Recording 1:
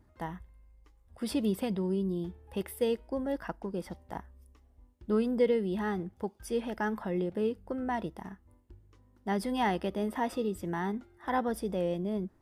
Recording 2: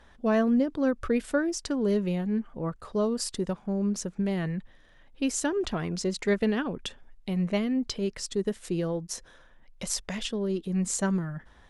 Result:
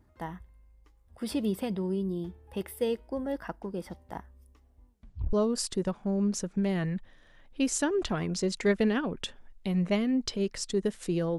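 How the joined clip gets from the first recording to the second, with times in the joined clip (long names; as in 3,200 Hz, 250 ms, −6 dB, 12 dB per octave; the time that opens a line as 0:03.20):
recording 1
0:04.90: tape stop 0.43 s
0:05.33: continue with recording 2 from 0:02.95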